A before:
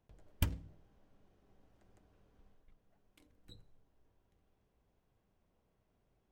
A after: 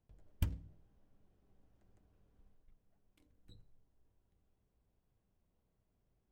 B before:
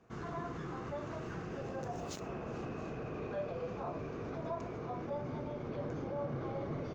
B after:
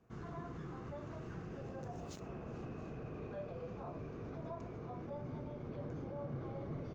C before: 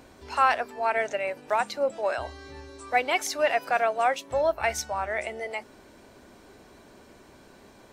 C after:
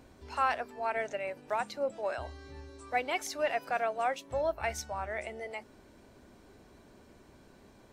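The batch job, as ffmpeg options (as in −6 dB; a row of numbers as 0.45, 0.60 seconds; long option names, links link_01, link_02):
-af "lowshelf=frequency=260:gain=7.5,volume=-8dB"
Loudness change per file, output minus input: −2.0, −5.0, −7.5 LU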